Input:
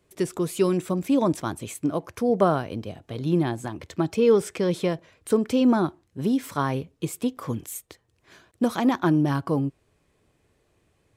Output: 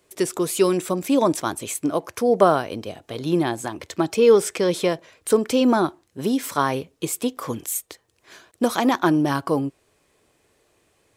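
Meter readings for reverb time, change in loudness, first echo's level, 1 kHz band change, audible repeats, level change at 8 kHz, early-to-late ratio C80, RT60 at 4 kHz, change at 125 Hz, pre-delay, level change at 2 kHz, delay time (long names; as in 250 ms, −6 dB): no reverb audible, +3.0 dB, no echo audible, +5.5 dB, no echo audible, +9.5 dB, no reverb audible, no reverb audible, −3.0 dB, no reverb audible, +5.5 dB, no echo audible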